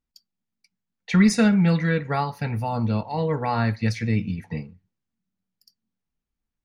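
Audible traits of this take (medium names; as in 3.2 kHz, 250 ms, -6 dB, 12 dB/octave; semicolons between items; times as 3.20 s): noise floor -84 dBFS; spectral tilt -6.0 dB/octave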